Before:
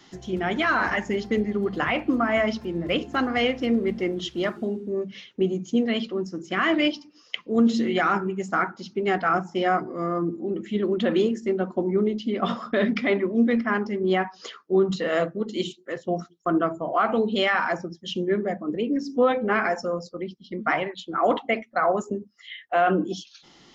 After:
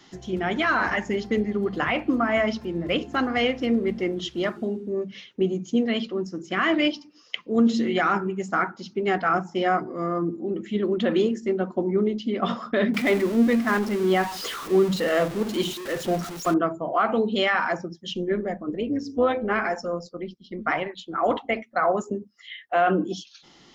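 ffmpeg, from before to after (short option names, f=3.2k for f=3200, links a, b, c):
-filter_complex "[0:a]asettb=1/sr,asplit=3[a][b][c];[a]atrim=end=12.944[d];[b]atrim=start=12.94:end=16.54,asetpts=PTS-STARTPTS,afade=t=in:d=0.004:c=qsin,afade=t=out:st=3.596:d=0.004:c=qsin,aeval=exprs='val(0)+0.5*0.0335*sgn(val(0))':c=same[e];[c]atrim=start=16.536[f];[d][e]acrossfade=d=0.004:c1=hsin:c2=qsin[g];[g][f]acrossfade=d=0.004:c1=qsin:c2=hsin,asettb=1/sr,asplit=3[h][i][j];[h]atrim=end=18.124[k];[i]atrim=start=18.12:end=21.59,asetpts=PTS-STARTPTS,afade=t=in:d=0.004:c=qsin,afade=t=out:st=3.466:d=0.004:c=qsin,tremolo=f=170:d=0.333[l];[j]atrim=start=21.586[m];[k][l]acrossfade=d=0.004:c1=hsin:c2=qsin[n];[n][m]acrossfade=d=0.004:c1=qsin:c2=hsin"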